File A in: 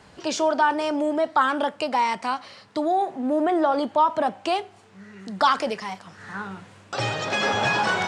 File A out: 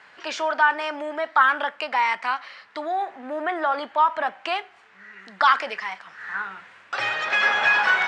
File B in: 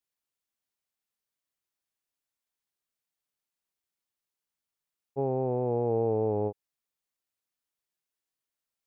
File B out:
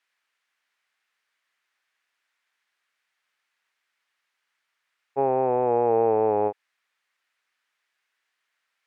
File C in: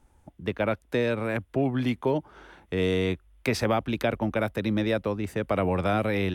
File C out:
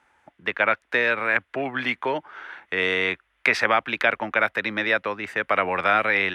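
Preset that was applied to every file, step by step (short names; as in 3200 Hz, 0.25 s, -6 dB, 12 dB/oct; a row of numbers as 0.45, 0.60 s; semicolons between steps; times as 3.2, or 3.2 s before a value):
band-pass 1800 Hz, Q 1.7; match loudness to -23 LUFS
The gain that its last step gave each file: +8.0, +22.0, +15.0 dB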